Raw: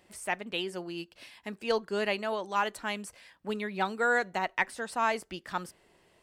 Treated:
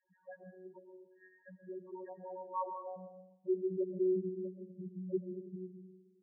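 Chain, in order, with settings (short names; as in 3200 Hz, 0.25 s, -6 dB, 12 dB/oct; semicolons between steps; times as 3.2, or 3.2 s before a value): dynamic EQ 3800 Hz, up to -6 dB, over -44 dBFS, Q 0.7; band-pass sweep 1600 Hz -> 330 Hz, 2.19–4.12; in parallel at +0.5 dB: compressor 8:1, threshold -49 dBFS, peak gain reduction 22 dB; on the sum: vocoder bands 8, saw 185 Hz; level quantiser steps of 12 dB; loudest bins only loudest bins 2; on a send at -5 dB: air absorption 440 m + reverb RT60 0.75 s, pre-delay 85 ms; on the sum: gain +9.5 dB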